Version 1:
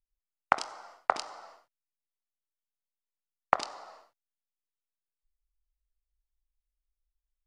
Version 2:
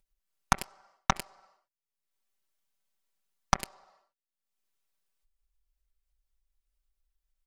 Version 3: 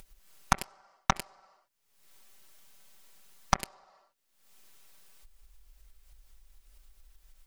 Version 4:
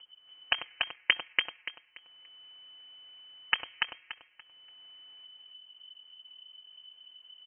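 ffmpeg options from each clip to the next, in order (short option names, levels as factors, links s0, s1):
-af "acompressor=mode=upward:threshold=0.00316:ratio=2.5,aeval=exprs='0.631*(cos(1*acos(clip(val(0)/0.631,-1,1)))-cos(1*PI/2))+0.00891*(cos(5*acos(clip(val(0)/0.631,-1,1)))-cos(5*PI/2))+0.2*(cos(6*acos(clip(val(0)/0.631,-1,1)))-cos(6*PI/2))+0.0708*(cos(7*acos(clip(val(0)/0.631,-1,1)))-cos(7*PI/2))':c=same,aecho=1:1:5.2:0.65,volume=0.668"
-af "acompressor=mode=upward:threshold=0.0141:ratio=2.5"
-af "aeval=exprs='val(0)*sin(2*PI*190*n/s)':c=same,lowpass=f=2700:t=q:w=0.5098,lowpass=f=2700:t=q:w=0.6013,lowpass=f=2700:t=q:w=0.9,lowpass=f=2700:t=q:w=2.563,afreqshift=-3200,aecho=1:1:288|576|864|1152:0.708|0.177|0.0442|0.0111,volume=1.41"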